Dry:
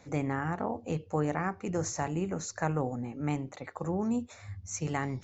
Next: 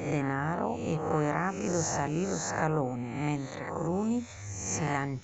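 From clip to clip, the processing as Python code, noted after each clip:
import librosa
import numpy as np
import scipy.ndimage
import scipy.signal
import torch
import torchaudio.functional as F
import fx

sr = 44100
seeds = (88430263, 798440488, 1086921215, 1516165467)

y = fx.spec_swells(x, sr, rise_s=0.95)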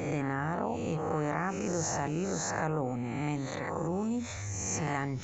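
y = fx.env_flatten(x, sr, amount_pct=50)
y = F.gain(torch.from_numpy(y), -4.0).numpy()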